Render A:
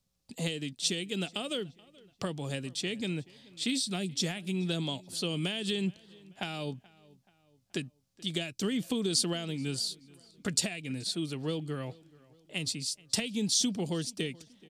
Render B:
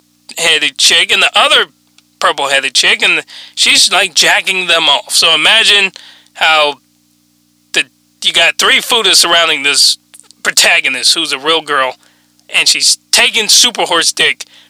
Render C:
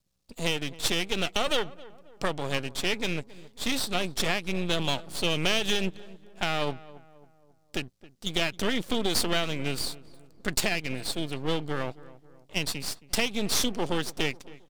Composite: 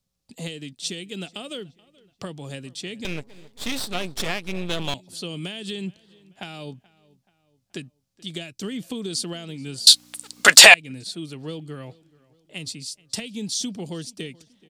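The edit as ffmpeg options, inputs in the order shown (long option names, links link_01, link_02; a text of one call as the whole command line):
ffmpeg -i take0.wav -i take1.wav -i take2.wav -filter_complex "[0:a]asplit=3[link_01][link_02][link_03];[link_01]atrim=end=3.052[link_04];[2:a]atrim=start=3.048:end=4.942[link_05];[link_02]atrim=start=4.938:end=9.872[link_06];[1:a]atrim=start=9.868:end=10.742[link_07];[link_03]atrim=start=10.738[link_08];[link_04][link_05]acrossfade=duration=0.004:curve1=hsin:curve2=hsin[link_09];[link_09][link_06]acrossfade=duration=0.004:curve1=hsin:curve2=hsin[link_10];[link_10][link_07]acrossfade=duration=0.004:curve1=hsin:curve2=hsin[link_11];[link_11][link_08]acrossfade=duration=0.004:curve1=hsin:curve2=hsin" out.wav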